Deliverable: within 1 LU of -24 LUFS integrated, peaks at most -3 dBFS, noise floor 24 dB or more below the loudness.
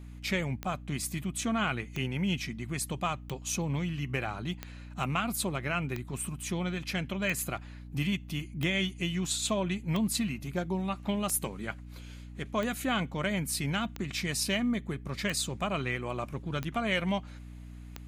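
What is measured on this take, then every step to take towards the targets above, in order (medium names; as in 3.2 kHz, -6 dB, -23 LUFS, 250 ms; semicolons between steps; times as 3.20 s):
clicks found 14; hum 60 Hz; highest harmonic 300 Hz; hum level -43 dBFS; loudness -32.5 LUFS; peak level -15.5 dBFS; loudness target -24.0 LUFS
-> de-click; de-hum 60 Hz, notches 5; trim +8.5 dB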